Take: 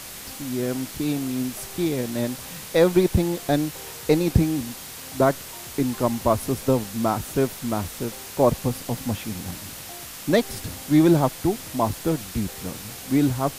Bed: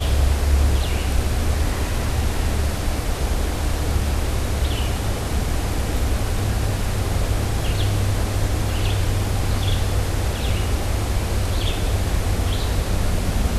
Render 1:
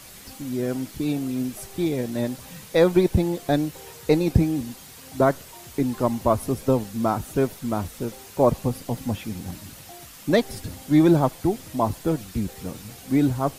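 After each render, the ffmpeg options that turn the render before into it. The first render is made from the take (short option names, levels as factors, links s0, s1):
-af "afftdn=nr=8:nf=-38"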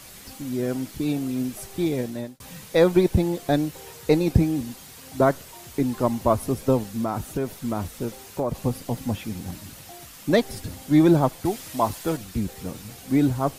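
-filter_complex "[0:a]asettb=1/sr,asplit=3[s0][s1][s2];[s0]atrim=end=6.924[s3];[s1]atrim=start=6.92:end=8.59,asetpts=PTS-STARTPTS,afade=t=in:d=0.004:c=qsin,afade=t=out:st=1.666:d=0.004:c=qsin,acompressor=threshold=0.0891:ratio=6:attack=3.2:release=140:knee=1:detection=peak[s4];[s2]atrim=start=8.586[s5];[s3][s4]acrossfade=d=0.004:c1=hsin:c2=qsin[s6];[s6][s5]acrossfade=d=0.004:c1=qsin:c2=hsin,asettb=1/sr,asplit=3[s7][s8][s9];[s7]atrim=end=11.454[s10];[s8]atrim=start=11.45:end=12.17,asetpts=PTS-STARTPTS,afade=t=in:d=0.004:c=qsin,afade=t=out:st=0.716:d=0.004:c=qsin,tiltshelf=f=640:g=-5[s11];[s9]atrim=start=12.166[s12];[s10][s11]acrossfade=d=0.004:c1=hsin:c2=qsin[s13];[s13][s12]acrossfade=d=0.004:c1=qsin:c2=hsin,asplit=2[s14][s15];[s14]atrim=end=2.4,asetpts=PTS-STARTPTS,afade=t=out:st=2:d=0.4[s16];[s15]atrim=start=2.4,asetpts=PTS-STARTPTS,afade=t=in:d=0.004:c=hsin[s17];[s16][s17]concat=n=2:v=0:a=1"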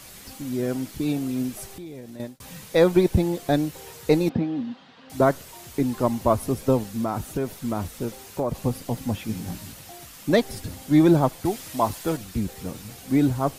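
-filter_complex "[0:a]asettb=1/sr,asplit=3[s0][s1][s2];[s0]atrim=end=1.724[s3];[s1]atrim=start=1.72:end=2.2,asetpts=PTS-STARTPTS,afade=t=in:d=0.004:c=qsin,afade=t=out:st=0.476:d=0.004:c=qsin,acompressor=threshold=0.0126:ratio=4:attack=3.2:release=140:knee=1:detection=peak[s4];[s2]atrim=start=2.196[s5];[s3][s4]acrossfade=d=0.004:c1=hsin:c2=qsin[s6];[s6][s5]acrossfade=d=0.004:c1=qsin:c2=hsin,asettb=1/sr,asplit=3[s7][s8][s9];[s7]atrim=end=4.294[s10];[s8]atrim=start=4.29:end=5.1,asetpts=PTS-STARTPTS,afade=t=in:d=0.004:c=qsin,afade=t=out:st=0.806:d=0.004:c=qsin,highpass=230,equalizer=f=240:t=q:w=4:g=7,equalizer=f=370:t=q:w=4:g=-9,equalizer=f=2300:t=q:w=4:g=-7,lowpass=f=3500:w=0.5412,lowpass=f=3500:w=1.3066[s11];[s9]atrim=start=5.096[s12];[s10][s11]acrossfade=d=0.004:c1=hsin:c2=qsin[s13];[s13][s12]acrossfade=d=0.004:c1=qsin:c2=hsin,asettb=1/sr,asplit=3[s14][s15][s16];[s14]atrim=end=9.274[s17];[s15]atrim=start=9.27:end=9.73,asetpts=PTS-STARTPTS,afade=t=in:d=0.004:c=qsin,afade=t=out:st=0.456:d=0.004:c=qsin,asplit=2[s18][s19];[s19]adelay=18,volume=0.631[s20];[s18][s20]amix=inputs=2:normalize=0,atrim=end_sample=20286[s21];[s16]atrim=start=9.726[s22];[s17][s21]acrossfade=d=0.004:c1=hsin:c2=qsin[s23];[s23][s22]acrossfade=d=0.004:c1=qsin:c2=hsin"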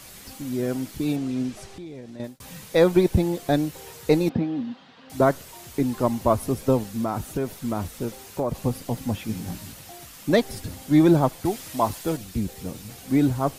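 -filter_complex "[0:a]asettb=1/sr,asplit=3[s0][s1][s2];[s0]atrim=end=1.164[s3];[s1]atrim=start=1.16:end=2.24,asetpts=PTS-STARTPTS,afade=t=in:d=0.004:c=qsin,afade=t=out:st=1.076:d=0.004:c=qsin,lowpass=6300[s4];[s2]atrim=start=2.236[s5];[s3][s4]acrossfade=d=0.004:c1=hsin:c2=qsin[s6];[s6][s5]acrossfade=d=0.004:c1=qsin:c2=hsin,asettb=1/sr,asplit=3[s7][s8][s9];[s7]atrim=end=12.014[s10];[s8]atrim=start=12.01:end=12.9,asetpts=PTS-STARTPTS,afade=t=in:d=0.004:c=qsin,afade=t=out:st=0.886:d=0.004:c=qsin,equalizer=f=1300:t=o:w=1.4:g=-3.5[s11];[s9]atrim=start=12.896[s12];[s10][s11]acrossfade=d=0.004:c1=hsin:c2=qsin[s13];[s13][s12]acrossfade=d=0.004:c1=qsin:c2=hsin"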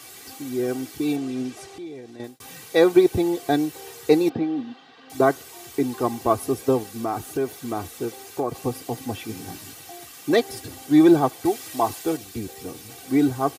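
-af "highpass=150,aecho=1:1:2.6:0.67"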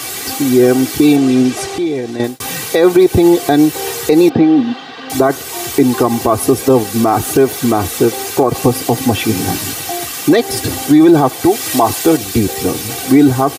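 -filter_complex "[0:a]asplit=2[s0][s1];[s1]acompressor=threshold=0.0355:ratio=6,volume=1.26[s2];[s0][s2]amix=inputs=2:normalize=0,alimiter=level_in=4.22:limit=0.891:release=50:level=0:latency=1"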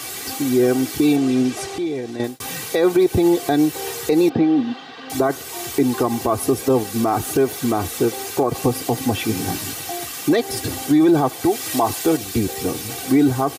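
-af "volume=0.447"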